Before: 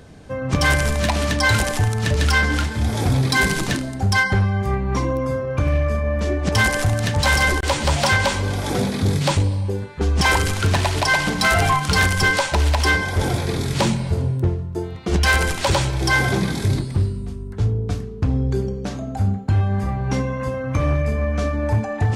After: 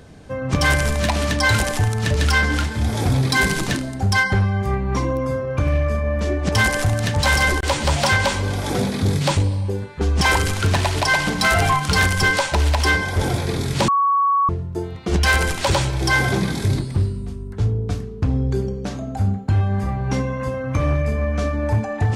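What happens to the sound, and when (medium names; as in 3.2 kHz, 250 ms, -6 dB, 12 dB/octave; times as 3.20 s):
13.88–14.49 s: bleep 1.12 kHz -14 dBFS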